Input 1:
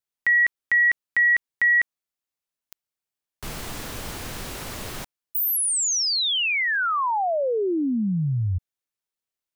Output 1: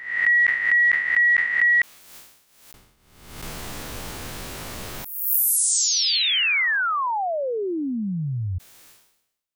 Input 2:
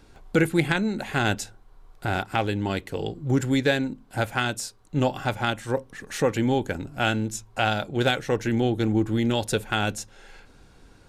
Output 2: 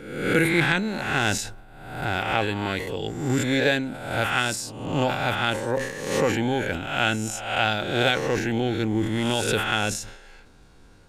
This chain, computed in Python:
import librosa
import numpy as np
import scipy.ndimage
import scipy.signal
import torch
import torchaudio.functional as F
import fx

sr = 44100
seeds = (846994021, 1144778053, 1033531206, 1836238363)

y = fx.spec_swells(x, sr, rise_s=0.91)
y = fx.dynamic_eq(y, sr, hz=2300.0, q=0.78, threshold_db=-33.0, ratio=4.0, max_db=4)
y = fx.sustainer(y, sr, db_per_s=70.0)
y = F.gain(torch.from_numpy(y), -3.0).numpy()